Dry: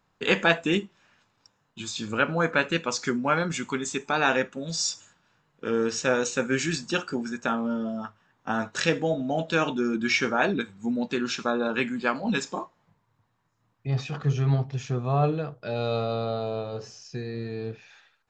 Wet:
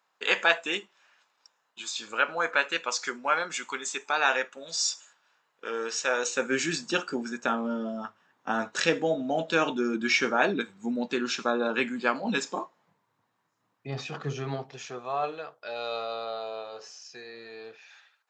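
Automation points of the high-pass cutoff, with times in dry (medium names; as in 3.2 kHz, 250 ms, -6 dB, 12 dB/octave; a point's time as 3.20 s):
6.11 s 640 Hz
6.61 s 240 Hz
14.29 s 240 Hz
15.18 s 710 Hz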